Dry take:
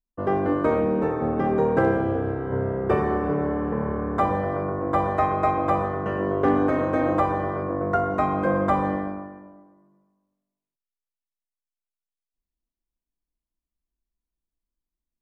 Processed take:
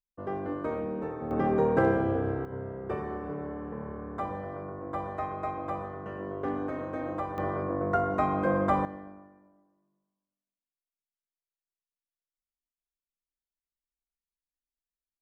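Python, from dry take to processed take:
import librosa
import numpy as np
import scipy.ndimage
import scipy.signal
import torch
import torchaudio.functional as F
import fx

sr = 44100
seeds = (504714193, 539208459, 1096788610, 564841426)

y = fx.gain(x, sr, db=fx.steps((0.0, -11.0), (1.31, -3.5), (2.45, -12.0), (7.38, -4.0), (8.85, -16.0)))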